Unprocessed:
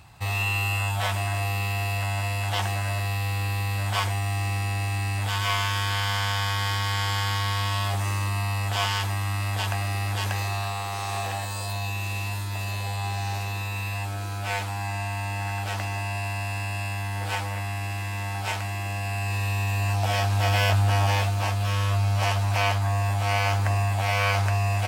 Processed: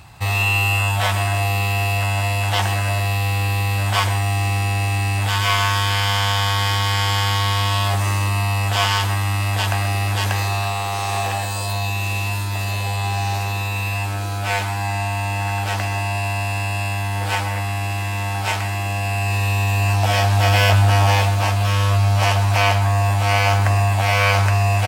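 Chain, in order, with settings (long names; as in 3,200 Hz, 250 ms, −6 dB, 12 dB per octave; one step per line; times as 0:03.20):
far-end echo of a speakerphone 130 ms, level −12 dB
level +7 dB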